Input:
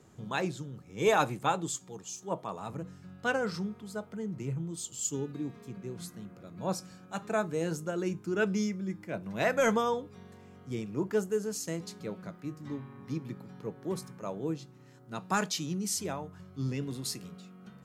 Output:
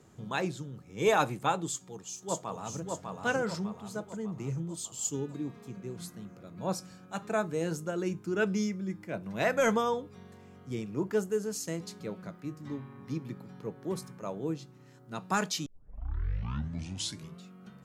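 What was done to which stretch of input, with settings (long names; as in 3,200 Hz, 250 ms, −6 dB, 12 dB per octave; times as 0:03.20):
0:01.68–0:02.82: delay throw 600 ms, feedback 50%, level −3 dB
0:15.66: tape start 1.78 s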